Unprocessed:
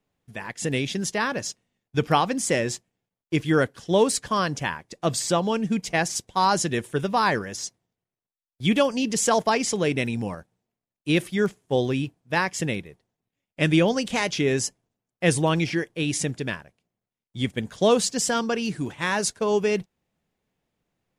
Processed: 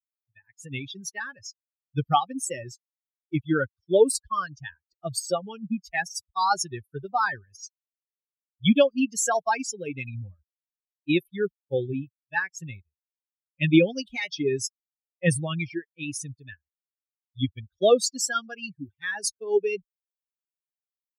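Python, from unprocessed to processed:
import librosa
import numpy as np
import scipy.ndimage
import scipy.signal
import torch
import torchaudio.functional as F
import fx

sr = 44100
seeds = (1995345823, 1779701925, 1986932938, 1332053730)

y = fx.bin_expand(x, sr, power=3.0)
y = fx.notch_comb(y, sr, f0_hz=1000.0)
y = F.gain(torch.from_numpy(y), 6.0).numpy()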